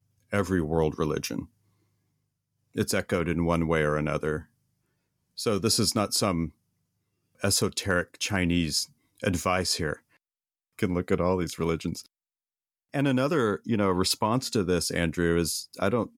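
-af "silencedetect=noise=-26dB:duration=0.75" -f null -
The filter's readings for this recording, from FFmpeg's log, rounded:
silence_start: 1.39
silence_end: 2.78 | silence_duration: 1.39
silence_start: 4.37
silence_end: 5.39 | silence_duration: 1.03
silence_start: 6.46
silence_end: 7.44 | silence_duration: 0.98
silence_start: 9.93
silence_end: 10.83 | silence_duration: 0.90
silence_start: 11.93
silence_end: 12.94 | silence_duration: 1.01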